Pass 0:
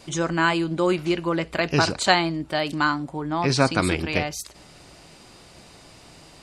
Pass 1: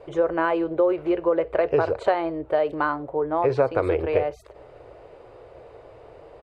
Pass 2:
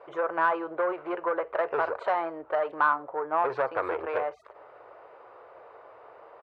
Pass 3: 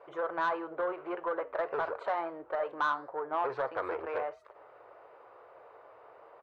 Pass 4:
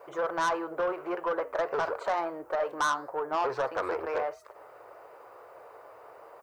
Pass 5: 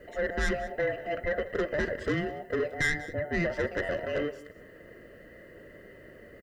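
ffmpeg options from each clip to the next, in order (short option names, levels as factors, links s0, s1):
-af "firequalizer=gain_entry='entry(120,0);entry(180,-17);entry(460,14);entry(750,3);entry(1600,-4);entry(5300,-26)':delay=0.05:min_phase=1,acompressor=threshold=0.141:ratio=4"
-af "aeval=exprs='(tanh(6.31*val(0)+0.25)-tanh(0.25))/6.31':c=same,bandpass=f=1200:t=q:w=1.9:csg=0,volume=2"
-af "asoftclip=type=tanh:threshold=0.158,flanger=delay=7:depth=2.6:regen=-88:speed=1.6:shape=sinusoidal"
-filter_complex "[0:a]asplit=2[s0][s1];[s1]aeval=exprs='0.0944*sin(PI/2*1.58*val(0)/0.0944)':c=same,volume=0.668[s2];[s0][s2]amix=inputs=2:normalize=0,aexciter=amount=5.1:drive=3.6:freq=4900,volume=0.631"
-af "afftfilt=real='real(if(between(b,1,1008),(2*floor((b-1)/48)+1)*48-b,b),0)':imag='imag(if(between(b,1,1008),(2*floor((b-1)/48)+1)*48-b,b),0)*if(between(b,1,1008),-1,1)':win_size=2048:overlap=0.75,aecho=1:1:190:0.133"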